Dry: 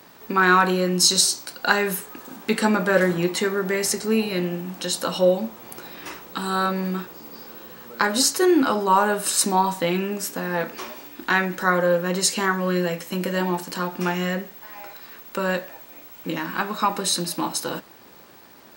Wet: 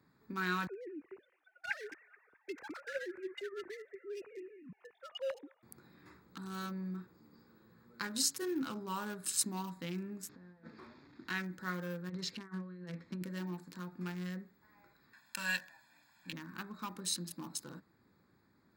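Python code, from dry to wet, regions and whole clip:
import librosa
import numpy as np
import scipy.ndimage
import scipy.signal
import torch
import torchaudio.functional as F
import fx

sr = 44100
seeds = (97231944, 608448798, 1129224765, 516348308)

y = fx.chain(x, sr, fx.sine_speech(),
    fx.echo_wet_highpass(ms=214, feedback_pct=41, hz=2500.0, wet_db=-4.5), at=(0.67, 5.63))
y = fx.chain(y, sr, fx.delta_mod(bps=32000, step_db=-40.0),
    fx.highpass(hz=80.0, slope=12),
    fx.over_compress(threshold_db=-33.0, ratio=-0.5), at=(10.29, 11.28))
y = fx.chain(y, sr, fx.lowpass(hz=4600.0, slope=24),
    fx.over_compress(threshold_db=-26.0, ratio=-0.5), at=(12.09, 13.23))
y = fx.chain(y, sr, fx.highpass(hz=94.0, slope=12),
    fx.tilt_shelf(db=-10.0, hz=670.0),
    fx.comb(ms=1.2, depth=0.9), at=(15.13, 16.33))
y = fx.wiener(y, sr, points=15)
y = scipy.signal.sosfilt(scipy.signal.butter(2, 68.0, 'highpass', fs=sr, output='sos'), y)
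y = fx.tone_stack(y, sr, knobs='6-0-2')
y = F.gain(torch.from_numpy(y), 3.5).numpy()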